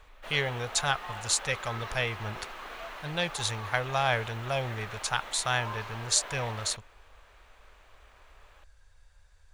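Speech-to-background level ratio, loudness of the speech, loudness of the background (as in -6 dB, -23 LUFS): 10.5 dB, -30.5 LUFS, -41.0 LUFS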